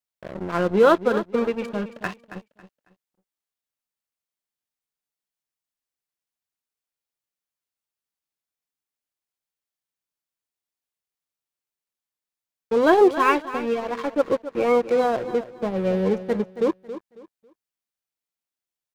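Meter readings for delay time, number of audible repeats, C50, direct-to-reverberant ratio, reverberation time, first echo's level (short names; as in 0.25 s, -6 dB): 0.274 s, 2, none, none, none, -13.0 dB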